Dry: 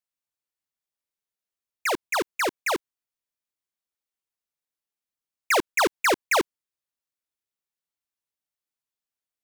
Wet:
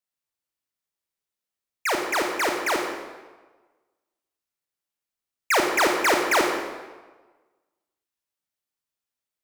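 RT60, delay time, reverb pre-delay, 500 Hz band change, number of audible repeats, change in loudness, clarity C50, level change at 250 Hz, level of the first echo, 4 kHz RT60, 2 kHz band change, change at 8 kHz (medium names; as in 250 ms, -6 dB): 1.3 s, no echo, 27 ms, +2.5 dB, no echo, +2.0 dB, 3.5 dB, +3.5 dB, no echo, 1.0 s, +2.5 dB, +2.0 dB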